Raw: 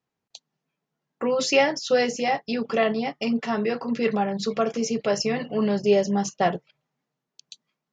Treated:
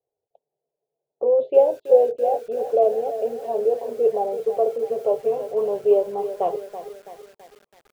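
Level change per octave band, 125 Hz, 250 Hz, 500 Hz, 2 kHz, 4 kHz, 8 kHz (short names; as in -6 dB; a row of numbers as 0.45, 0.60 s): under -15 dB, -13.5 dB, +5.5 dB, under -20 dB, under -20 dB, under -15 dB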